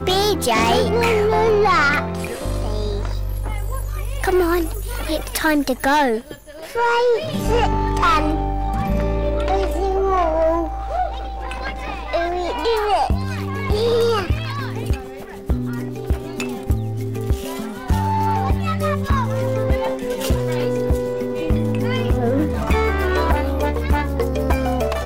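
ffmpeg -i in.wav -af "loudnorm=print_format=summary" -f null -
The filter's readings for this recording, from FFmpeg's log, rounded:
Input Integrated:    -20.5 LUFS
Input True Peak:      -9.6 dBTP
Input LRA:             3.7 LU
Input Threshold:     -30.5 LUFS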